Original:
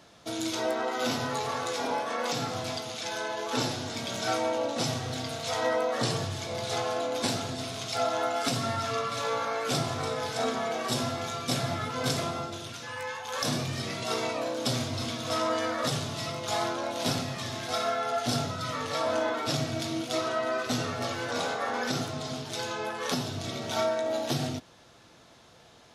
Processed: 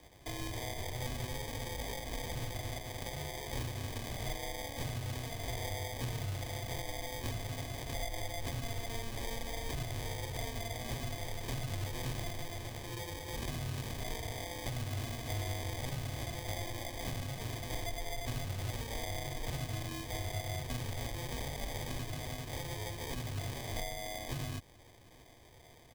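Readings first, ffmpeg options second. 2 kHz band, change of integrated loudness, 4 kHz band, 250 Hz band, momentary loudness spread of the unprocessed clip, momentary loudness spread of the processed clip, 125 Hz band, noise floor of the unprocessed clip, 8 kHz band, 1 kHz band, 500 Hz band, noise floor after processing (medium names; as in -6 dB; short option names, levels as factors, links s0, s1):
-9.0 dB, -9.5 dB, -10.0 dB, -11.5 dB, 6 LU, 3 LU, -2.0 dB, -55 dBFS, -7.5 dB, -13.5 dB, -13.5 dB, -57 dBFS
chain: -filter_complex "[0:a]acrusher=samples=32:mix=1:aa=0.000001,firequalizer=gain_entry='entry(110,0);entry(160,-8);entry(3000,0)':delay=0.05:min_phase=1,acrossover=split=140|2500[s0][s1][s2];[s0]acompressor=threshold=0.0112:ratio=4[s3];[s1]acompressor=threshold=0.00631:ratio=4[s4];[s2]acompressor=threshold=0.00562:ratio=4[s5];[s3][s4][s5]amix=inputs=3:normalize=0,equalizer=f=210:w=7:g=-4,volume=1.26"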